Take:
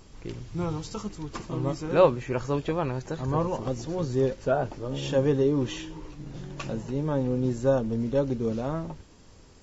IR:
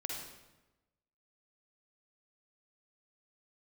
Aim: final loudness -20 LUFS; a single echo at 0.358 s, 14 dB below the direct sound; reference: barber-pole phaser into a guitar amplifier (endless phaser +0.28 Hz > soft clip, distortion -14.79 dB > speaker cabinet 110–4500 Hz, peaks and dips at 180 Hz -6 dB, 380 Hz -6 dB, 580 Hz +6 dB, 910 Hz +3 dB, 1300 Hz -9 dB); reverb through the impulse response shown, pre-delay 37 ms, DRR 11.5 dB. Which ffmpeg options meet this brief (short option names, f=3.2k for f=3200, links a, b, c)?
-filter_complex "[0:a]aecho=1:1:358:0.2,asplit=2[a][b];[1:a]atrim=start_sample=2205,adelay=37[c];[b][c]afir=irnorm=-1:irlink=0,volume=-12.5dB[d];[a][d]amix=inputs=2:normalize=0,asplit=2[e][f];[f]afreqshift=0.28[g];[e][g]amix=inputs=2:normalize=1,asoftclip=threshold=-21dB,highpass=110,equalizer=f=180:t=q:w=4:g=-6,equalizer=f=380:t=q:w=4:g=-6,equalizer=f=580:t=q:w=4:g=6,equalizer=f=910:t=q:w=4:g=3,equalizer=f=1.3k:t=q:w=4:g=-9,lowpass=f=4.5k:w=0.5412,lowpass=f=4.5k:w=1.3066,volume=12dB"